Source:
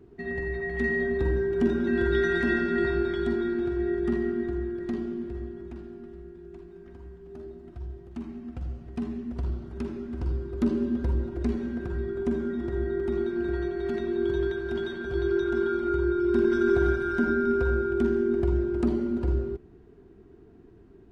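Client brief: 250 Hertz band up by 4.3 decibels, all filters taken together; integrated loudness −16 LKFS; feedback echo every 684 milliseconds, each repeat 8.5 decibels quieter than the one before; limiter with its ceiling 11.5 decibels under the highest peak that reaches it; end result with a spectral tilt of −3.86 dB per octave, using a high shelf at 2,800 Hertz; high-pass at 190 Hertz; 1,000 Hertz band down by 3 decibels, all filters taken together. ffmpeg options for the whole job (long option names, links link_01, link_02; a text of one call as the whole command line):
ffmpeg -i in.wav -af "highpass=190,equalizer=frequency=250:width_type=o:gain=7.5,equalizer=frequency=1000:width_type=o:gain=-8,highshelf=frequency=2800:gain=5.5,alimiter=limit=-21dB:level=0:latency=1,aecho=1:1:684|1368|2052|2736:0.376|0.143|0.0543|0.0206,volume=13.5dB" out.wav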